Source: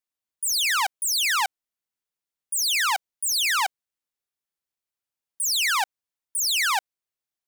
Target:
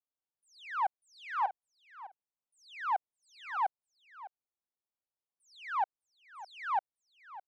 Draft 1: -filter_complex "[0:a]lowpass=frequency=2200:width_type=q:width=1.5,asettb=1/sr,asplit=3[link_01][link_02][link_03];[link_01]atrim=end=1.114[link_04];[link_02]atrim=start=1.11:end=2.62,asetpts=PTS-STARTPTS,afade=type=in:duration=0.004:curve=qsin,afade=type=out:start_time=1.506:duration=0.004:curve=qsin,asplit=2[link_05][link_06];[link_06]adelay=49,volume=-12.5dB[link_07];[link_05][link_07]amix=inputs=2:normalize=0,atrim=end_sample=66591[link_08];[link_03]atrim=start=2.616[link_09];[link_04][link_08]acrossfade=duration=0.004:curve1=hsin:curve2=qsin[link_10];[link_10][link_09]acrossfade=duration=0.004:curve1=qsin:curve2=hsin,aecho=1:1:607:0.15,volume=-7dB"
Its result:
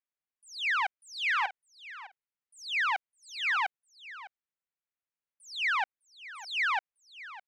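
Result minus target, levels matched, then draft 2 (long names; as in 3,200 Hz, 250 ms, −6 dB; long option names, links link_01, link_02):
2,000 Hz band +8.5 dB
-filter_complex "[0:a]lowpass=frequency=880:width_type=q:width=1.5,asettb=1/sr,asplit=3[link_01][link_02][link_03];[link_01]atrim=end=1.114[link_04];[link_02]atrim=start=1.11:end=2.62,asetpts=PTS-STARTPTS,afade=type=in:duration=0.004:curve=qsin,afade=type=out:start_time=1.506:duration=0.004:curve=qsin,asplit=2[link_05][link_06];[link_06]adelay=49,volume=-12.5dB[link_07];[link_05][link_07]amix=inputs=2:normalize=0,atrim=end_sample=66591[link_08];[link_03]atrim=start=2.616[link_09];[link_04][link_08]acrossfade=duration=0.004:curve1=hsin:curve2=qsin[link_10];[link_10][link_09]acrossfade=duration=0.004:curve1=qsin:curve2=hsin,aecho=1:1:607:0.15,volume=-7dB"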